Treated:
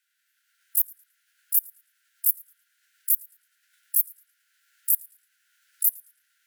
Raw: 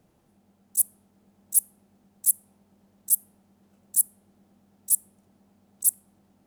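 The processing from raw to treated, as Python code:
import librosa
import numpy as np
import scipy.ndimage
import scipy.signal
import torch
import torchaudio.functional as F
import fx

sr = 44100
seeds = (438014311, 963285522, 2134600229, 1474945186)

y = fx.recorder_agc(x, sr, target_db=-8.5, rise_db_per_s=15.0, max_gain_db=30)
y = fx.echo_filtered(y, sr, ms=110, feedback_pct=51, hz=4800.0, wet_db=-16.5)
y = fx.formant_shift(y, sr, semitones=5)
y = scipy.signal.sosfilt(scipy.signal.cheby1(10, 1.0, 1400.0, 'highpass', fs=sr, output='sos'), y)
y = fx.cheby_harmonics(y, sr, harmonics=(3,), levels_db=(-31,), full_scale_db=-2.5)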